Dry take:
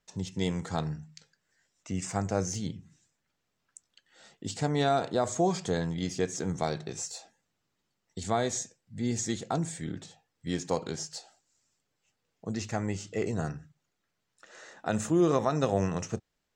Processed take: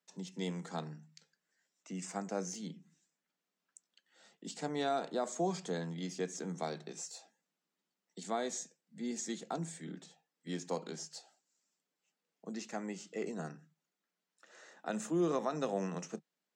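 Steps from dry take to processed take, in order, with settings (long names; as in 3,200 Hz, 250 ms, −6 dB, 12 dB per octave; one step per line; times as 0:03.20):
Butterworth high-pass 160 Hz 72 dB per octave
level −7.5 dB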